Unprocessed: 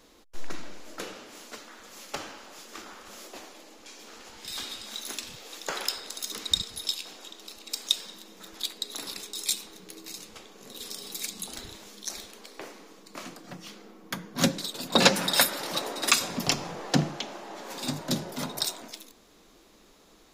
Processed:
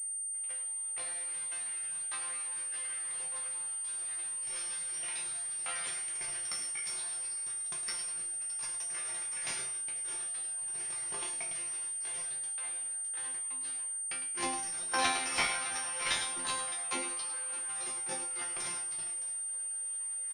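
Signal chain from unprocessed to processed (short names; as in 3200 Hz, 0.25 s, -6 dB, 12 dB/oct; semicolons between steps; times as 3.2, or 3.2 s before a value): reverse; upward compressor, threshold -32 dBFS; reverse; pitch shift +6.5 st; HPF 520 Hz 6 dB/oct; tilt shelf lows -5.5 dB, about 940 Hz; on a send: tapped delay 0.106/0.614 s -10/-16 dB; on the sum: sample leveller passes 2; resonator bank F3 fifth, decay 0.41 s; pulse-width modulation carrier 8800 Hz; gain +1.5 dB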